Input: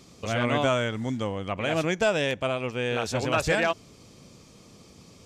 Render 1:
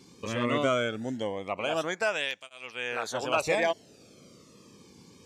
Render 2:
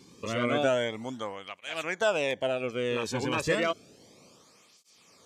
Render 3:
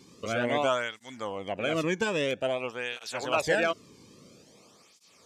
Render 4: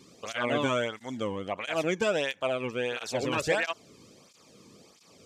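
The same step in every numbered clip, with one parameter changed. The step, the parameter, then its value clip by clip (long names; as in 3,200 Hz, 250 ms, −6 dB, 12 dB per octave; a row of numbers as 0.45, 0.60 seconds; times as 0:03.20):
through-zero flanger with one copy inverted, nulls at: 0.2, 0.31, 0.5, 1.5 Hertz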